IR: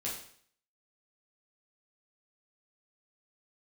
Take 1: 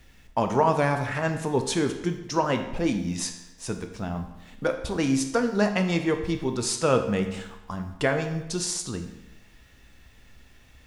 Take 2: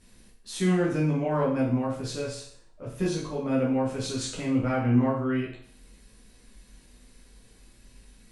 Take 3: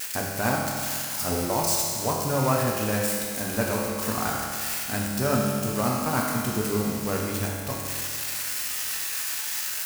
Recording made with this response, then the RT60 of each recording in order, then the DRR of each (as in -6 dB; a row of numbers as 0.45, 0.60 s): 2; 0.95, 0.55, 2.2 s; 6.0, -6.5, -3.0 dB